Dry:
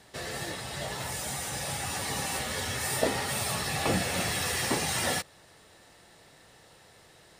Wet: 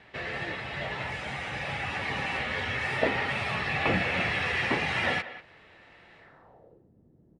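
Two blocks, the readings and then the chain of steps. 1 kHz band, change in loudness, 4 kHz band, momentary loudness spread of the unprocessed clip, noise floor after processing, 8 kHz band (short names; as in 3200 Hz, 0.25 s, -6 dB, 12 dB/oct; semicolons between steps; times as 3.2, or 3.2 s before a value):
+1.5 dB, +1.0 dB, -2.5 dB, 8 LU, -60 dBFS, -20.5 dB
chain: speakerphone echo 0.19 s, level -14 dB; low-pass sweep 2400 Hz -> 250 Hz, 6.17–6.9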